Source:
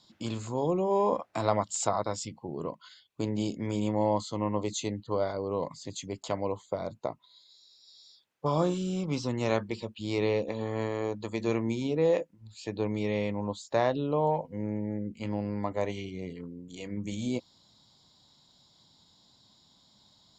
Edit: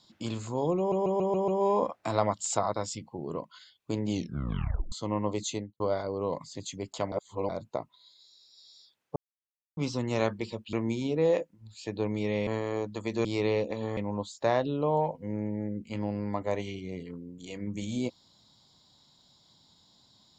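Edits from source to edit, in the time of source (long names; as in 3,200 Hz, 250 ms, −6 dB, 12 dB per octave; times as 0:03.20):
0:00.78: stutter 0.14 s, 6 plays
0:03.39: tape stop 0.83 s
0:04.80–0:05.10: fade out and dull
0:06.42–0:06.79: reverse
0:08.46–0:09.07: silence
0:10.03–0:10.75: swap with 0:11.53–0:13.27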